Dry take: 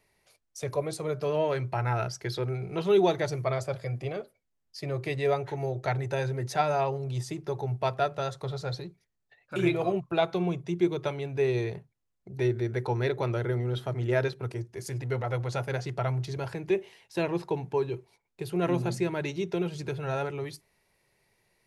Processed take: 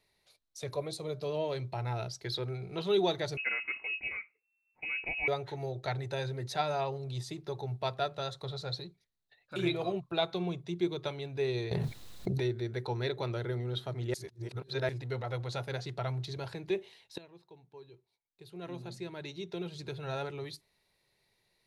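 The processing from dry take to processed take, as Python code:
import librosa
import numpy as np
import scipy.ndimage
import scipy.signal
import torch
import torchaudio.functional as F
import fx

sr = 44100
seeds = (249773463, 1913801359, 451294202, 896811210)

y = fx.peak_eq(x, sr, hz=1500.0, db=-7.5, octaves=0.88, at=(0.88, 2.24))
y = fx.freq_invert(y, sr, carrier_hz=2700, at=(3.37, 5.28))
y = fx.env_flatten(y, sr, amount_pct=100, at=(11.71, 12.44))
y = fx.edit(y, sr, fx.reverse_span(start_s=14.14, length_s=0.75),
    fx.fade_in_from(start_s=17.18, length_s=2.96, curve='qua', floor_db=-20.5), tone=tone)
y = fx.peak_eq(y, sr, hz=3900.0, db=12.0, octaves=0.41)
y = F.gain(torch.from_numpy(y), -6.0).numpy()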